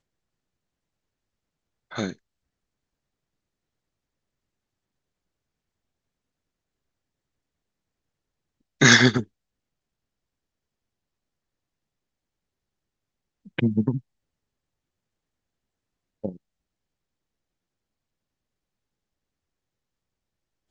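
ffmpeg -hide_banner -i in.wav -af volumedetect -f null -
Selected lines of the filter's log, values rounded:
mean_volume: -32.0 dB
max_volume: -1.6 dB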